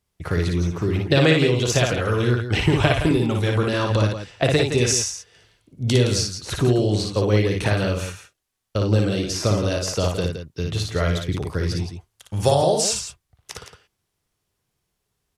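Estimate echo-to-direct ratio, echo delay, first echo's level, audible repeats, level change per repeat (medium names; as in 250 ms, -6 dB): -2.5 dB, 57 ms, -3.5 dB, 2, no regular repeats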